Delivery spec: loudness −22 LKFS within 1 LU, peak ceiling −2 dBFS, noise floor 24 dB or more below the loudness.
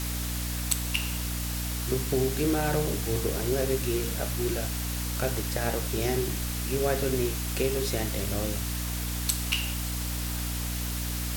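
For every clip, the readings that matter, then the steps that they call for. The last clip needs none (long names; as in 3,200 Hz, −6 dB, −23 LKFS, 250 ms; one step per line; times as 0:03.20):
mains hum 60 Hz; hum harmonics up to 300 Hz; level of the hum −30 dBFS; background noise floor −32 dBFS; target noise floor −53 dBFS; integrated loudness −29.0 LKFS; sample peak −9.5 dBFS; target loudness −22.0 LKFS
→ mains-hum notches 60/120/180/240/300 Hz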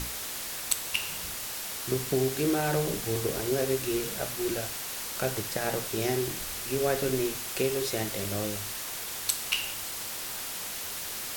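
mains hum none found; background noise floor −37 dBFS; target noise floor −54 dBFS
→ noise reduction from a noise print 17 dB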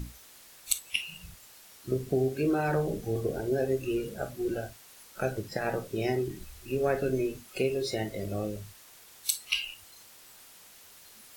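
background noise floor −54 dBFS; target noise floor −56 dBFS
→ noise reduction from a noise print 6 dB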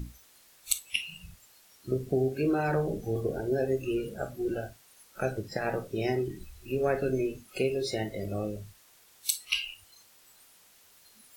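background noise floor −60 dBFS; integrated loudness −31.5 LKFS; sample peak −9.0 dBFS; target loudness −22.0 LKFS
→ level +9.5 dB
brickwall limiter −2 dBFS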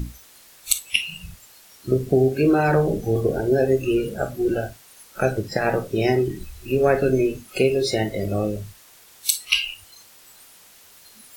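integrated loudness −22.0 LKFS; sample peak −2.0 dBFS; background noise floor −50 dBFS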